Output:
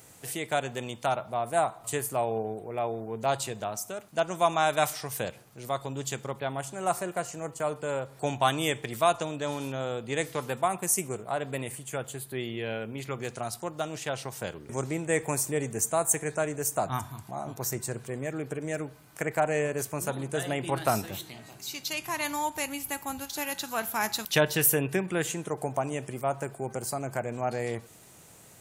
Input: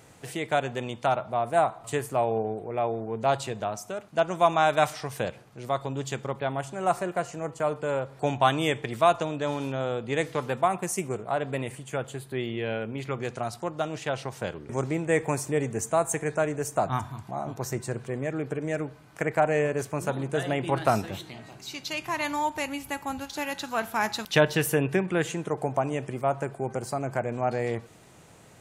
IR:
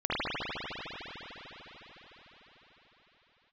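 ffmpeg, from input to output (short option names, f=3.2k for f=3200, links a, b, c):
-af "aemphasis=mode=production:type=50fm,volume=-3dB"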